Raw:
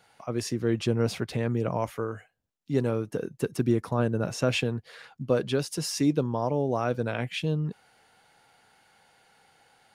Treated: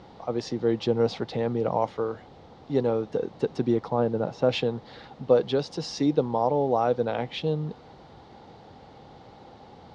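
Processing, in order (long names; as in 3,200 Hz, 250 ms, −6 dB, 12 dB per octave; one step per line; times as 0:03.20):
0:03.88–0:04.49: high-shelf EQ 2,500 Hz −11.5 dB
background noise brown −40 dBFS
loudspeaker in its box 140–5,200 Hz, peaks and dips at 490 Hz +6 dB, 810 Hz +10 dB, 1,600 Hz −5 dB, 2,500 Hz −6 dB, 3,800 Hz +4 dB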